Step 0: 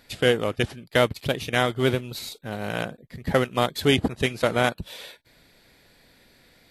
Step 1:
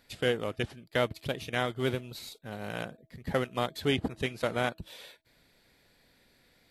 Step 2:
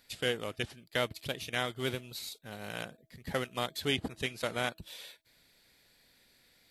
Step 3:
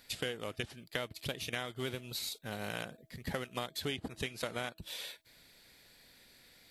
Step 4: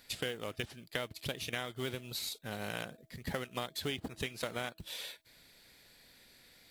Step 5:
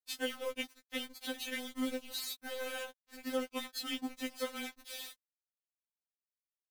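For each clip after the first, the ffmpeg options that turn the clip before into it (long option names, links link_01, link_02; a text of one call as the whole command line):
ffmpeg -i in.wav -filter_complex "[0:a]bandreject=frequency=324.1:width_type=h:width=4,bandreject=frequency=648.2:width_type=h:width=4,acrossover=split=4500[link_01][link_02];[link_02]alimiter=level_in=4dB:limit=-24dB:level=0:latency=1:release=152,volume=-4dB[link_03];[link_01][link_03]amix=inputs=2:normalize=0,volume=-8dB" out.wav
ffmpeg -i in.wav -af "highshelf=frequency=2100:gain=9.5,volume=-5.5dB" out.wav
ffmpeg -i in.wav -af "acompressor=threshold=-39dB:ratio=6,volume=4.5dB" out.wav
ffmpeg -i in.wav -af "acrusher=bits=5:mode=log:mix=0:aa=0.000001" out.wav
ffmpeg -i in.wav -af "aeval=exprs='val(0)*gte(abs(val(0)),0.00891)':channel_layout=same,afftfilt=real='re*3.46*eq(mod(b,12),0)':imag='im*3.46*eq(mod(b,12),0)':win_size=2048:overlap=0.75,volume=2dB" out.wav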